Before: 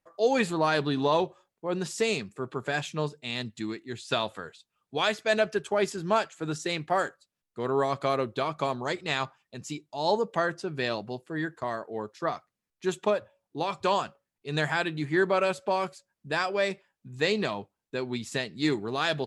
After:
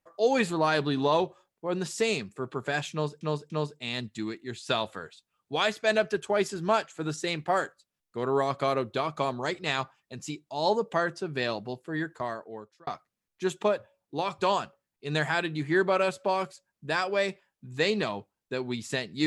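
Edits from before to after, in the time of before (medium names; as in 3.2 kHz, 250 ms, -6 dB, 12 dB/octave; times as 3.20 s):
2.92–3.21 s: loop, 3 plays
11.61–12.29 s: fade out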